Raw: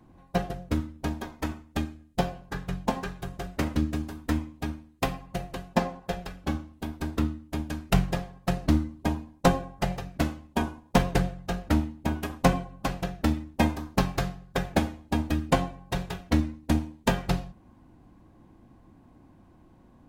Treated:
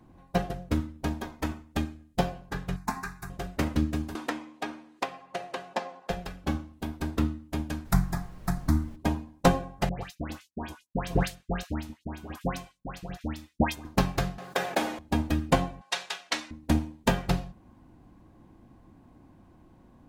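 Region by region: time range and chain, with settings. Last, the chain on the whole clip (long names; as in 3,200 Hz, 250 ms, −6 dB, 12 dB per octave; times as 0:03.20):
0:02.76–0:03.30: tilt shelving filter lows −5 dB, about 730 Hz + phaser with its sweep stopped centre 1,300 Hz, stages 4
0:04.15–0:06.10: high-pass filter 450 Hz + high-frequency loss of the air 55 metres + multiband upward and downward compressor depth 100%
0:07.84–0:08.95: high-shelf EQ 8,500 Hz +5.5 dB + phaser with its sweep stopped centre 1,200 Hz, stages 4 + background noise brown −44 dBFS
0:09.89–0:13.85: noise gate −40 dBFS, range −37 dB + square-wave tremolo 2.5 Hz, depth 65%, duty 35% + all-pass dispersion highs, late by 123 ms, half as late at 1,600 Hz
0:14.38–0:14.99: high-pass filter 430 Hz + envelope flattener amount 50%
0:15.81–0:16.51: band-pass filter 770–6,900 Hz + high-shelf EQ 2,100 Hz +11.5 dB
whole clip: no processing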